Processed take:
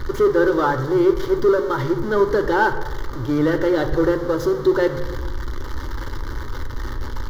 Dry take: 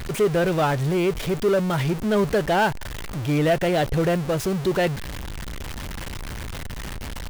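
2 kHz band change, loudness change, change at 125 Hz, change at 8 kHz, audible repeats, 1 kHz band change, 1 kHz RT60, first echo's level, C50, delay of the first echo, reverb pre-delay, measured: +3.0 dB, +3.0 dB, -2.5 dB, no reading, no echo, +2.5 dB, 0.95 s, no echo, 10.0 dB, no echo, 3 ms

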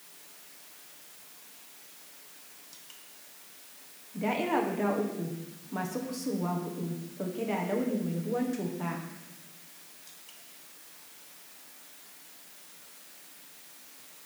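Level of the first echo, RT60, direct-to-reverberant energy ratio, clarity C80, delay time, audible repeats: no echo, 1.0 s, -1.0 dB, 7.0 dB, no echo, no echo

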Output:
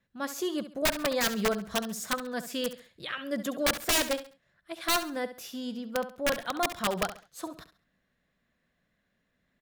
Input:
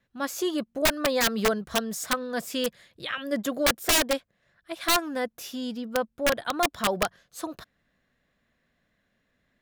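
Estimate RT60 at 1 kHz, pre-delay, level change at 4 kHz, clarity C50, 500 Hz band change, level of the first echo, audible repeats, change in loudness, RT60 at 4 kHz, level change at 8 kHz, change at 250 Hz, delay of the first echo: no reverb, no reverb, -3.5 dB, no reverb, -3.5 dB, -12.5 dB, 3, -3.5 dB, no reverb, -3.5 dB, -3.0 dB, 68 ms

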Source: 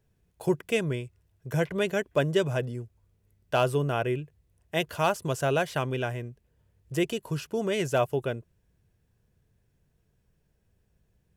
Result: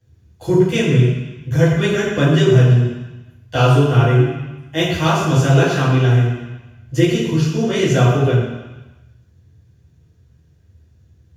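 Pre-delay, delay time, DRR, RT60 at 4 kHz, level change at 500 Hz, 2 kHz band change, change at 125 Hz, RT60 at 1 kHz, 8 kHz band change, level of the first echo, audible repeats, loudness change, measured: 5 ms, no echo, -12.5 dB, 1.2 s, +9.5 dB, +10.0 dB, +19.0 dB, 1.2 s, +10.5 dB, no echo, no echo, +13.0 dB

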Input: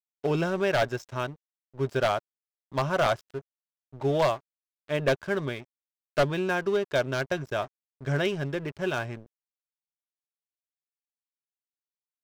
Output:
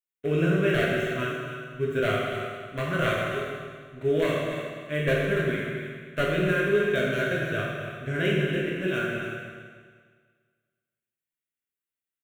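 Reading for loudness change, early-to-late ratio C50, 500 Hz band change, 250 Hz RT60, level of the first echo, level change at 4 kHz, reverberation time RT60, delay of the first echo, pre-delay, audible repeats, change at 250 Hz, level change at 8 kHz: +1.5 dB, -1.0 dB, +1.5 dB, 1.7 s, -10.0 dB, +1.5 dB, 1.7 s, 284 ms, 12 ms, 1, +4.5 dB, -1.5 dB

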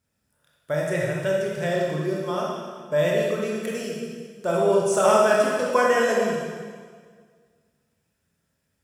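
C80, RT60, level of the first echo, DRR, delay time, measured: 1.5 dB, 1.8 s, no echo, -3.5 dB, no echo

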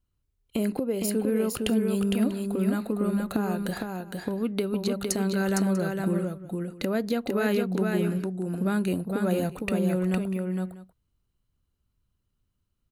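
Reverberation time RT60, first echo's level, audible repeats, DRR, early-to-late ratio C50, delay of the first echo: no reverb, -4.0 dB, 2, no reverb, no reverb, 459 ms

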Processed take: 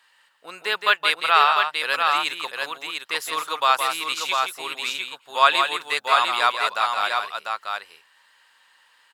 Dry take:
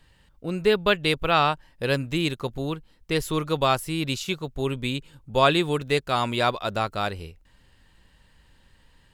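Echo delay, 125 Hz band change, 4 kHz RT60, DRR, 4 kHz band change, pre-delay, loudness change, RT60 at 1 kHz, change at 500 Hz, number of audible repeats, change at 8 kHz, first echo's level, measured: 168 ms, under -30 dB, no reverb, no reverb, +5.0 dB, no reverb, +3.0 dB, no reverb, -6.5 dB, 2, +4.5 dB, -6.5 dB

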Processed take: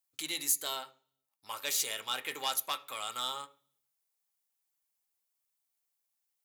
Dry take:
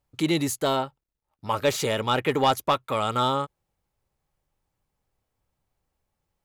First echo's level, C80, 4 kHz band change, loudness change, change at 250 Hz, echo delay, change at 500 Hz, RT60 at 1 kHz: no echo, 23.0 dB, -4.5 dB, -8.5 dB, -24.5 dB, no echo, -21.0 dB, 0.40 s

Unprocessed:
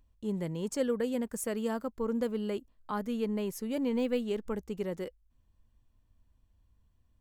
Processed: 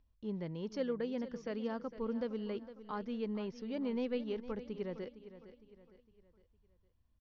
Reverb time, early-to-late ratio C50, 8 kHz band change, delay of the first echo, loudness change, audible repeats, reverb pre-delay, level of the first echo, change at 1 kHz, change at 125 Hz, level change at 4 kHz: no reverb, no reverb, under -20 dB, 459 ms, -6.0 dB, 3, no reverb, -14.0 dB, -6.0 dB, -6.0 dB, -6.0 dB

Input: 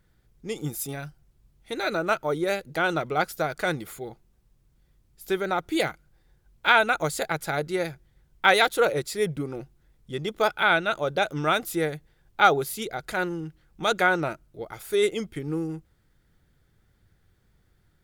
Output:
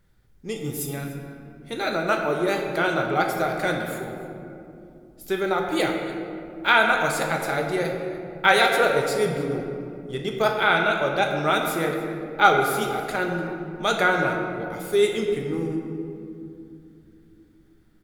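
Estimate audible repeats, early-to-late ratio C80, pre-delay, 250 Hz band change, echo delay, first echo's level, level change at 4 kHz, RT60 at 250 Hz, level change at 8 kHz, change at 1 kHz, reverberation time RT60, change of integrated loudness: 1, 5.0 dB, 5 ms, +4.0 dB, 294 ms, -18.0 dB, +2.0 dB, 4.4 s, +1.0 dB, +3.0 dB, 2.7 s, +2.0 dB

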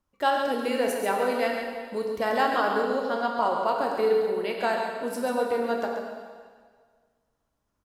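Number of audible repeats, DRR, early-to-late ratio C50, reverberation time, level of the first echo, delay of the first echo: 1, -0.5 dB, 1.5 dB, 1.7 s, -7.0 dB, 137 ms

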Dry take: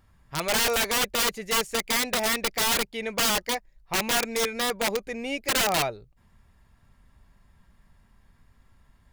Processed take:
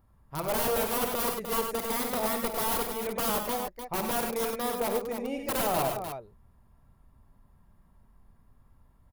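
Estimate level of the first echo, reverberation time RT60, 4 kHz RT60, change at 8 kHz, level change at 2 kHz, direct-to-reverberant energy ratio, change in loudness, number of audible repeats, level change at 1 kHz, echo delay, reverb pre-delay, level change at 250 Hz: -10.0 dB, no reverb, no reverb, -7.5 dB, -10.5 dB, no reverb, -4.5 dB, 3, -1.5 dB, 51 ms, no reverb, -1.0 dB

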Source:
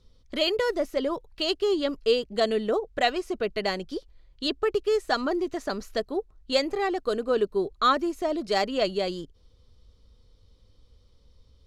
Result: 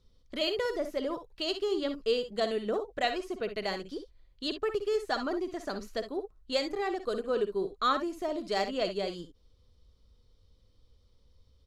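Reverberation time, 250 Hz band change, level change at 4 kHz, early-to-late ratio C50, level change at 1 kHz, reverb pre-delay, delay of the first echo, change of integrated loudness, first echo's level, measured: no reverb, -5.5 dB, -5.5 dB, no reverb, -5.5 dB, no reverb, 57 ms, -5.5 dB, -11.0 dB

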